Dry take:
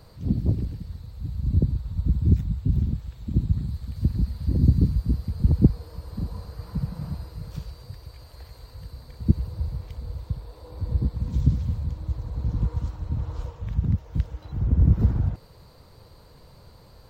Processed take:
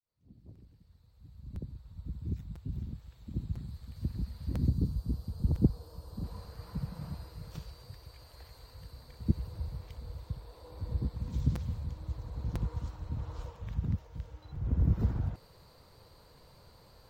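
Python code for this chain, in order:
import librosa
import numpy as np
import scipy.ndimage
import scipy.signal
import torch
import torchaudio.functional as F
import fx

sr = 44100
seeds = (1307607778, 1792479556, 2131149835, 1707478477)

y = fx.fade_in_head(x, sr, length_s=5.69)
y = fx.peak_eq(y, sr, hz=2100.0, db=-13.0, octaves=0.91, at=(4.69, 6.24))
y = fx.hpss(y, sr, part='percussive', gain_db=-11, at=(14.06, 14.64), fade=0.02)
y = fx.low_shelf(y, sr, hz=360.0, db=-5.5)
y = fx.buffer_crackle(y, sr, first_s=0.55, period_s=1.0, block=256, kind='repeat')
y = F.gain(torch.from_numpy(y), -4.0).numpy()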